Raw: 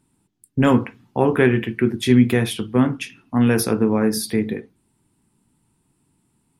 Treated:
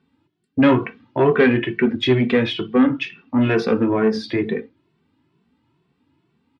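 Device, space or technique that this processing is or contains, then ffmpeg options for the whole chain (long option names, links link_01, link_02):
barber-pole flanger into a guitar amplifier: -filter_complex "[0:a]asplit=2[link_01][link_02];[link_02]adelay=2.2,afreqshift=2.2[link_03];[link_01][link_03]amix=inputs=2:normalize=1,asoftclip=type=tanh:threshold=-13.5dB,highpass=110,equalizer=frequency=120:width_type=q:width=4:gain=-5,equalizer=frequency=200:width_type=q:width=4:gain=-6,equalizer=frequency=810:width_type=q:width=4:gain=-4,lowpass=frequency=4000:width=0.5412,lowpass=frequency=4000:width=1.3066,volume=7.5dB"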